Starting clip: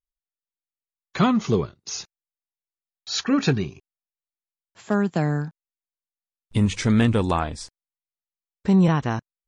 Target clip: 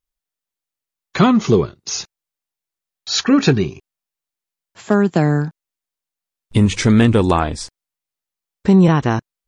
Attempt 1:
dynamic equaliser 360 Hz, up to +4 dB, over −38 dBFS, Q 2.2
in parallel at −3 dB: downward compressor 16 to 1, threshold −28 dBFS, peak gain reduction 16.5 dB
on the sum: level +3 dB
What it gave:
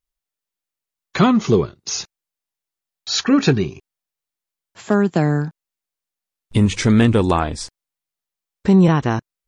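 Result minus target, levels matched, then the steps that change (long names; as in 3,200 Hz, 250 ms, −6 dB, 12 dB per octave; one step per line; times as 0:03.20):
downward compressor: peak gain reduction +8 dB
change: downward compressor 16 to 1, threshold −19.5 dBFS, peak gain reduction 8.5 dB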